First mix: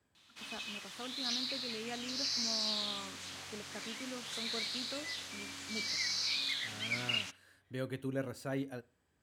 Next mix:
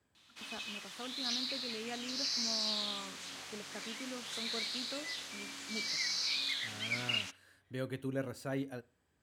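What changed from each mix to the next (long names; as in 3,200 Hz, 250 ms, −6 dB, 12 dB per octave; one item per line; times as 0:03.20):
background: add high-pass filter 160 Hz 12 dB per octave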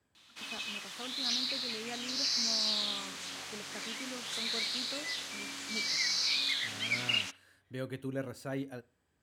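background +4.0 dB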